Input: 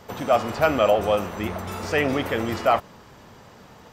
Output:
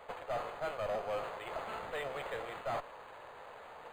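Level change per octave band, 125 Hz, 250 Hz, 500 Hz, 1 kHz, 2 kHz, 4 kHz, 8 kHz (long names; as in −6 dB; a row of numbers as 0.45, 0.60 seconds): −21.5, −26.0, −16.5, −15.0, −15.0, −16.5, −18.5 decibels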